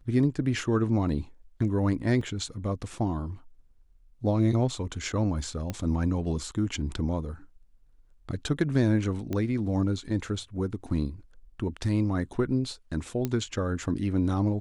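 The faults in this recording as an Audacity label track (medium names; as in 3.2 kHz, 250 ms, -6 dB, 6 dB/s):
2.210000	2.210000	dropout 3.3 ms
5.700000	5.700000	pop -18 dBFS
9.330000	9.330000	pop -18 dBFS
13.250000	13.250000	pop -15 dBFS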